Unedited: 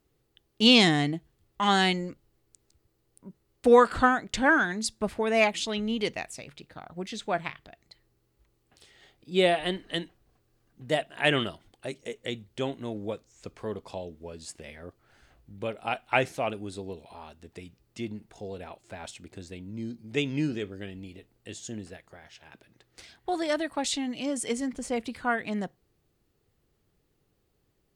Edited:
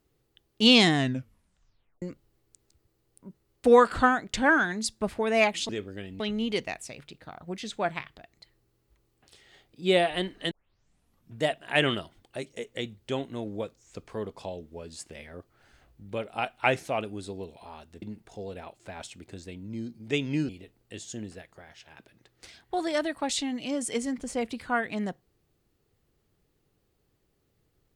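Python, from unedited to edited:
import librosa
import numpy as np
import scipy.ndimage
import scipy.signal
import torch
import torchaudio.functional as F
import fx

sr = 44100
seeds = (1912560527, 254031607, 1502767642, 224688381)

y = fx.edit(x, sr, fx.tape_stop(start_s=0.95, length_s=1.07),
    fx.tape_start(start_s=10.0, length_s=0.92),
    fx.cut(start_s=17.51, length_s=0.55),
    fx.move(start_s=20.53, length_s=0.51, to_s=5.69), tone=tone)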